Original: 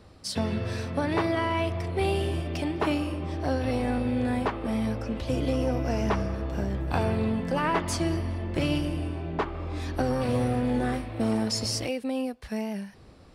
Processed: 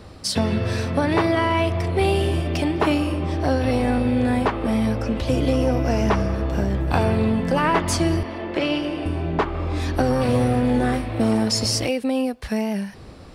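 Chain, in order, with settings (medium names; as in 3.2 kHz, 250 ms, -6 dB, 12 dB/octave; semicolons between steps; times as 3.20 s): 8.23–9.06 s: three-band isolator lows -19 dB, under 260 Hz, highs -16 dB, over 5 kHz; in parallel at -0.5 dB: compression, threshold -34 dBFS, peak gain reduction 13 dB; on the sum: trim +4.5 dB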